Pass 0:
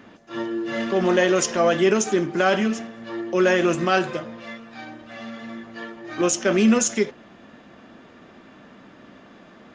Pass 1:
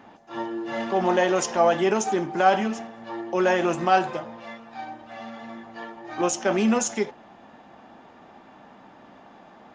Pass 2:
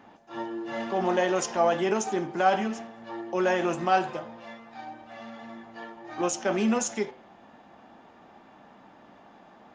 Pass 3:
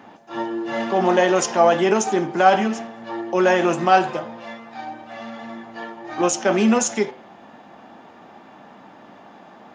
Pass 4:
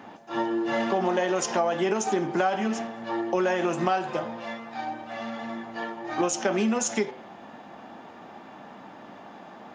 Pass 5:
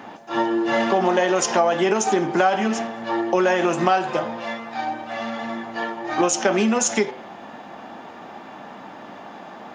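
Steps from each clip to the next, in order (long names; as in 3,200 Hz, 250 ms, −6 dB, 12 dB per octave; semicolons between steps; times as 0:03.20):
parametric band 830 Hz +14.5 dB 0.54 octaves; level −5 dB
hum removal 128.7 Hz, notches 39; level −3.5 dB
high-pass filter 98 Hz; level +8 dB
downward compressor 10 to 1, threshold −21 dBFS, peak gain reduction 13 dB
low-shelf EQ 330 Hz −3.5 dB; level +7 dB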